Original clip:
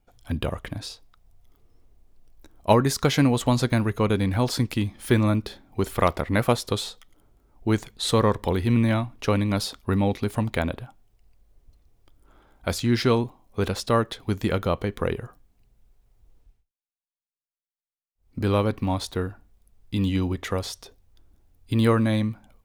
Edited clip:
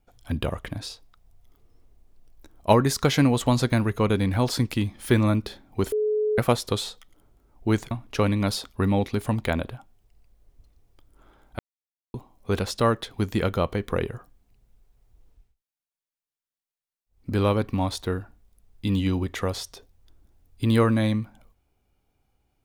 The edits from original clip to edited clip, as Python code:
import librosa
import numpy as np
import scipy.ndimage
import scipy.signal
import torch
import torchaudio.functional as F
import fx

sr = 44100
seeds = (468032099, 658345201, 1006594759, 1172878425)

y = fx.edit(x, sr, fx.bleep(start_s=5.92, length_s=0.46, hz=426.0, db=-20.5),
    fx.cut(start_s=7.91, length_s=1.09),
    fx.silence(start_s=12.68, length_s=0.55), tone=tone)